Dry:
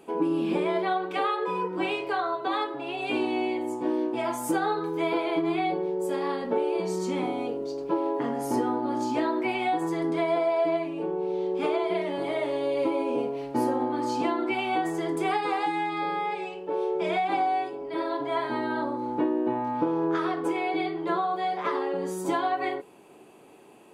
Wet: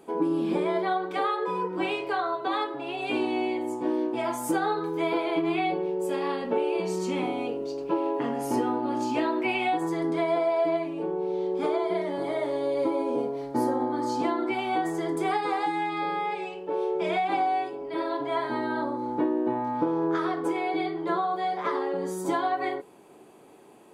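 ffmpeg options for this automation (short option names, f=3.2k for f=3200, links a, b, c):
-af "asetnsamples=n=441:p=0,asendcmd='1.7 equalizer g -1;5.36 equalizer g 7.5;9.77 equalizer g -4;11.56 equalizer g -14.5;14.19 equalizer g -7.5;15.82 equalizer g 0;18.36 equalizer g -6.5',equalizer=f=2.7k:t=o:w=0.3:g=-8.5"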